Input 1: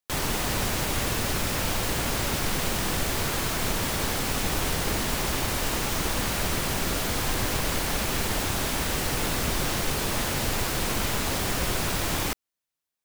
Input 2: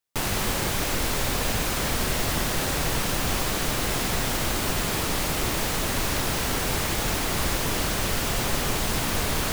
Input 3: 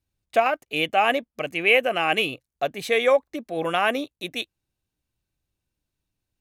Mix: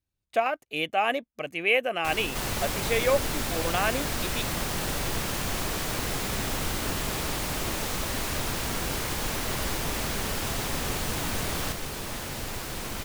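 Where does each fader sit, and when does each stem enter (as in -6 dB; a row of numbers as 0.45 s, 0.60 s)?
-7.5 dB, -6.0 dB, -5.0 dB; 1.95 s, 2.20 s, 0.00 s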